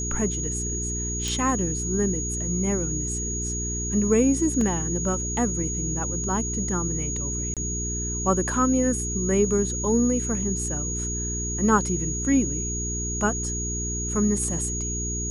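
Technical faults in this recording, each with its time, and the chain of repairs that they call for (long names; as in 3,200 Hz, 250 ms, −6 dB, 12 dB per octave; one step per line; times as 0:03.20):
mains hum 60 Hz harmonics 7 −31 dBFS
whistle 6,700 Hz −29 dBFS
0:01.28: click
0:04.61: drop-out 2.8 ms
0:07.54–0:07.57: drop-out 27 ms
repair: click removal
hum removal 60 Hz, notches 7
notch filter 6,700 Hz, Q 30
repair the gap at 0:04.61, 2.8 ms
repair the gap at 0:07.54, 27 ms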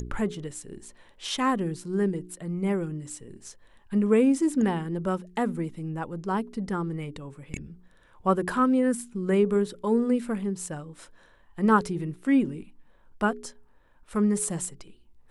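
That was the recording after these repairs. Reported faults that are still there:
none of them is left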